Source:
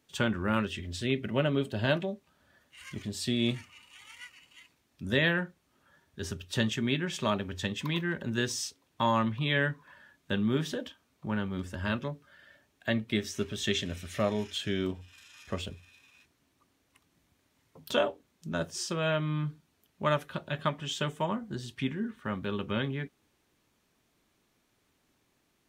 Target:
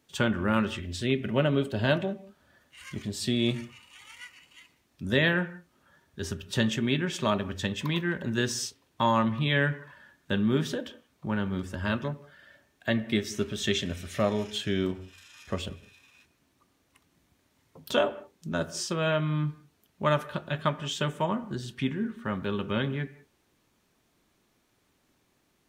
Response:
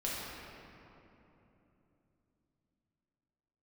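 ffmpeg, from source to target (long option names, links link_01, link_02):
-filter_complex "[0:a]asplit=2[link_01][link_02];[link_02]lowpass=frequency=2900:width=0.5412,lowpass=frequency=2900:width=1.3066[link_03];[1:a]atrim=start_sample=2205,afade=type=out:start_time=0.25:duration=0.01,atrim=end_sample=11466[link_04];[link_03][link_04]afir=irnorm=-1:irlink=0,volume=-16.5dB[link_05];[link_01][link_05]amix=inputs=2:normalize=0,volume=2dB"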